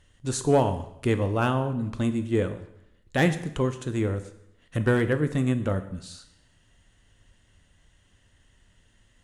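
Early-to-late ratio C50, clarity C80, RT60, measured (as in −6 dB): 12.5 dB, 14.5 dB, 0.75 s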